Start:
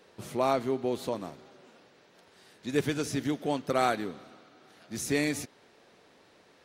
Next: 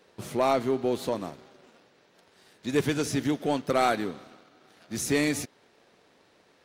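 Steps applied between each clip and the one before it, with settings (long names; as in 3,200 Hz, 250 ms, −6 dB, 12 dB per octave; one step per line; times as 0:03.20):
leveller curve on the samples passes 1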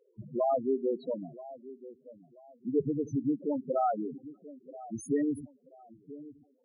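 delay with a low-pass on its return 983 ms, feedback 31%, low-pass 1,300 Hz, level −17 dB
spectral peaks only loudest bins 4
level −1.5 dB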